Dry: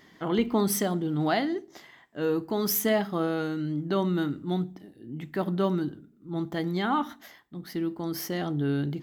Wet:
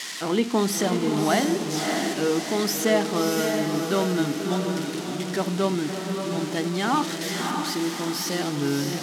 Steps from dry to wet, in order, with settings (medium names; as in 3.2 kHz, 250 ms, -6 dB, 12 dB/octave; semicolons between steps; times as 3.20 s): zero-crossing glitches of -20.5 dBFS; band-pass 170–6100 Hz; on a send: echo that smears into a reverb 618 ms, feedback 46%, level -4 dB; on the sum: trim +3 dB